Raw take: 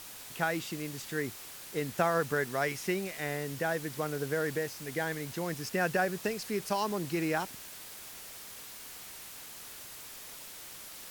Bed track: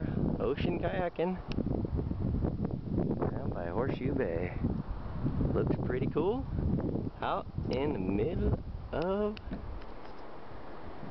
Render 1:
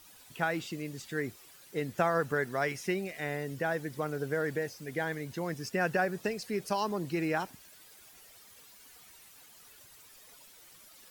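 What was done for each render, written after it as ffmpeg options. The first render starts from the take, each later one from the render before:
-af "afftdn=nr=12:nf=-47"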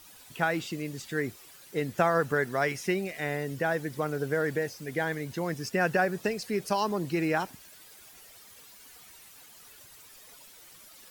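-af "volume=3.5dB"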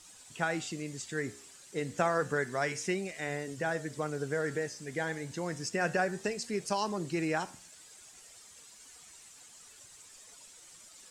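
-af "lowpass=f=7.7k:t=q:w=3.3,flanger=delay=9.7:depth=7.3:regen=-83:speed=0.3:shape=triangular"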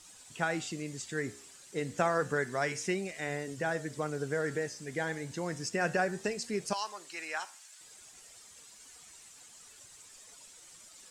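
-filter_complex "[0:a]asettb=1/sr,asplit=3[a][b][c];[a]atrim=end=6.734[d];[b]atrim=start=6.73:end=7.81,asetpts=PTS-STARTPTS,afade=t=in:d=0.004:c=qsin,afade=t=out:st=1.076:d=0.004:c=qsin,highpass=1k[e];[c]atrim=start=7.806[f];[d][e]acrossfade=d=0.004:c1=hsin:c2=qsin[g];[g][f]acrossfade=d=0.004:c1=qsin:c2=hsin"

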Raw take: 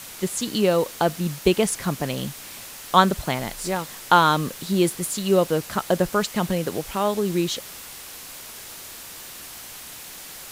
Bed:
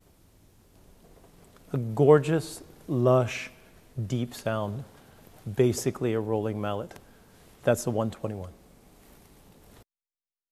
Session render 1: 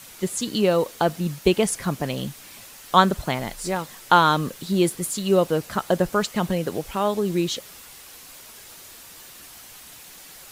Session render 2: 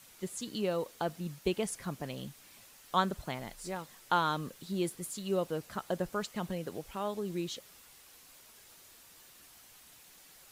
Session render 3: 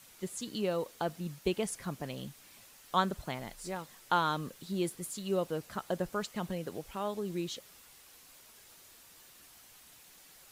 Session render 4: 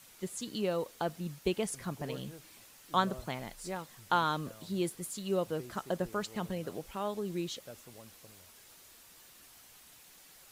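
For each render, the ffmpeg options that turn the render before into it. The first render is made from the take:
-af "afftdn=nr=6:nf=-40"
-af "volume=-13dB"
-af anull
-filter_complex "[1:a]volume=-26dB[a];[0:a][a]amix=inputs=2:normalize=0"

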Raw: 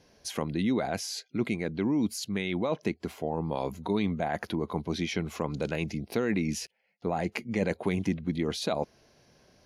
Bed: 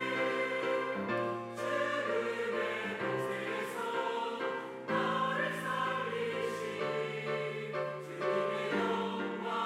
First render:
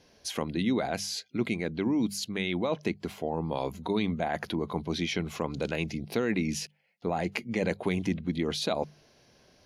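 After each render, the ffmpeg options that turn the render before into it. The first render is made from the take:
-af "equalizer=f=3.4k:w=1.3:g=3.5,bandreject=f=50:t=h:w=6,bandreject=f=100:t=h:w=6,bandreject=f=150:t=h:w=6,bandreject=f=200:t=h:w=6"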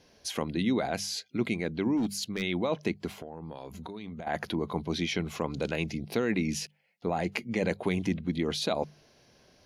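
-filter_complex "[0:a]asplit=3[a][b][c];[a]afade=t=out:st=1.96:d=0.02[d];[b]asoftclip=type=hard:threshold=-24.5dB,afade=t=in:st=1.96:d=0.02,afade=t=out:st=2.41:d=0.02[e];[c]afade=t=in:st=2.41:d=0.02[f];[d][e][f]amix=inputs=3:normalize=0,asettb=1/sr,asplit=3[g][h][i];[g]atrim=end=3.184[j];[h]atrim=start=3.18:end=4.27,asetpts=PTS-STARTPTS,afade=t=in:d=0.004:c=qsin,afade=t=out:st=1.086:d=0.004:c=qsin,acompressor=threshold=-36dB:ratio=12:attack=3.2:release=140:knee=1:detection=peak[k];[i]atrim=start=4.266[l];[j][k]acrossfade=d=0.004:c1=hsin:c2=qsin[m];[m][l]acrossfade=d=0.004:c1=qsin:c2=hsin"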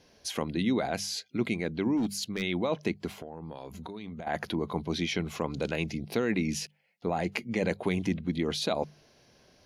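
-af anull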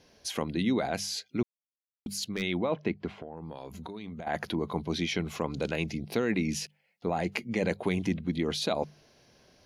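-filter_complex "[0:a]asettb=1/sr,asplit=3[a][b][c];[a]atrim=end=2.584[d];[b]atrim=start=2.58:end=3.37,asetpts=PTS-STARTPTS,afade=t=in:d=0.004:c=qsin,afade=t=out:st=0.786:d=0.004:c=qsin,lowpass=2.8k[e];[c]atrim=start=3.366[f];[d][e]acrossfade=d=0.004:c1=hsin:c2=qsin[g];[g][f]acrossfade=d=0.004:c1=qsin:c2=hsin,asplit=3[h][i][j];[h]atrim=end=1.43,asetpts=PTS-STARTPTS,afade=t=out:st=1.426:d=0.004:c=hsin[k];[i]atrim=start=1.43:end=2.06,asetpts=PTS-STARTPTS,volume=0[l];[j]atrim=start=2.06,asetpts=PTS-STARTPTS,afade=t=in:d=0.004:c=hsin[m];[k][l][m]concat=n=3:v=0:a=1"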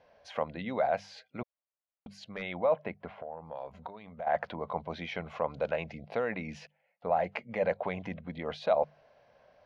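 -af "lowpass=1.9k,lowshelf=f=450:t=q:w=3:g=-8"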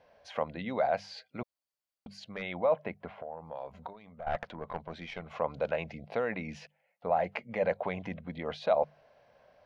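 -filter_complex "[0:a]asettb=1/sr,asplit=3[a][b][c];[a]atrim=end=0.704[d];[b]atrim=start=0.7:end=2.2,asetpts=PTS-STARTPTS,afade=t=in:d=0.004:c=qsin,afade=t=out:st=1.496:d=0.004:c=qsin,equalizer=f=4.6k:w=7.7:g=8[e];[c]atrim=start=2.196[f];[d][e]acrossfade=d=0.004:c1=hsin:c2=qsin[g];[g][f]acrossfade=d=0.004:c1=qsin:c2=hsin,asettb=1/sr,asplit=3[h][i][j];[h]atrim=end=3.934[k];[i]atrim=start=3.93:end=5.31,asetpts=PTS-STARTPTS,afade=t=in:d=0.004:c=qsin,afade=t=out:st=1.376:d=0.004:c=qsin,aeval=exprs='(tanh(15.8*val(0)+0.7)-tanh(0.7))/15.8':c=same[l];[j]atrim=start=5.306[m];[k][l]acrossfade=d=0.004:c1=hsin:c2=qsin[n];[n][m]acrossfade=d=0.004:c1=qsin:c2=hsin"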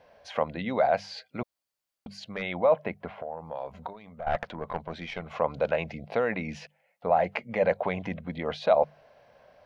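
-af "volume=5dB"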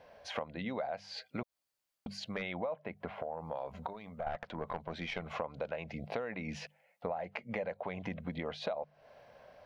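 -af "acompressor=threshold=-34dB:ratio=12"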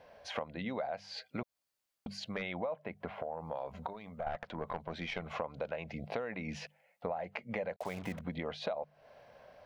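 -filter_complex "[0:a]asettb=1/sr,asplit=3[a][b][c];[a]atrim=end=7.764[d];[b]atrim=start=7.76:end=8.21,asetpts=PTS-STARTPTS,afade=t=in:d=0.004:c=qsin,afade=t=out:st=0.446:d=0.004:c=qsin,acrusher=bits=7:mix=0:aa=0.5[e];[c]atrim=start=8.206[f];[d][e]acrossfade=d=0.004:c1=hsin:c2=qsin[g];[g][f]acrossfade=d=0.004:c1=qsin:c2=hsin"

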